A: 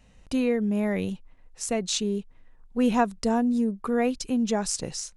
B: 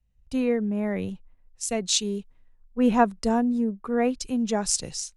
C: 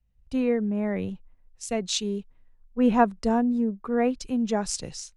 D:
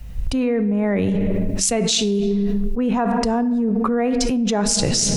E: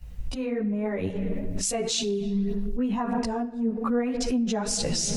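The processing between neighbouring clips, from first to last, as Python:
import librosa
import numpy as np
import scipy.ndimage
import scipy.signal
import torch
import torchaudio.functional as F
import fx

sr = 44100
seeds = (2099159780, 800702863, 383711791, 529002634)

y1 = fx.band_widen(x, sr, depth_pct=70)
y2 = fx.high_shelf(y1, sr, hz=5700.0, db=-10.5)
y3 = fx.room_shoebox(y2, sr, seeds[0], volume_m3=410.0, walls='mixed', distance_m=0.31)
y3 = fx.env_flatten(y3, sr, amount_pct=100)
y3 = y3 * librosa.db_to_amplitude(-4.0)
y4 = fx.chorus_voices(y3, sr, voices=2, hz=0.95, base_ms=15, depth_ms=3.0, mix_pct=65)
y4 = y4 * librosa.db_to_amplitude(-5.5)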